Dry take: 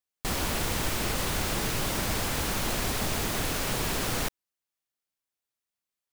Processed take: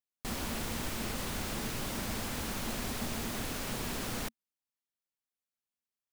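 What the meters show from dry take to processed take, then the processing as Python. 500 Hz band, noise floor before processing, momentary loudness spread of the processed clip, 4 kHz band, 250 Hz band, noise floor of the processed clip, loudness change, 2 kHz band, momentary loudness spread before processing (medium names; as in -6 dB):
-8.0 dB, under -85 dBFS, 1 LU, -8.0 dB, -4.0 dB, under -85 dBFS, -7.5 dB, -8.0 dB, 1 LU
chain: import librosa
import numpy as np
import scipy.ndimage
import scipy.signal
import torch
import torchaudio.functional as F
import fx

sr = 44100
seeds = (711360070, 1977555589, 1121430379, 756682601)

y = fx.peak_eq(x, sr, hz=230.0, db=8.5, octaves=0.31)
y = F.gain(torch.from_numpy(y), -8.0).numpy()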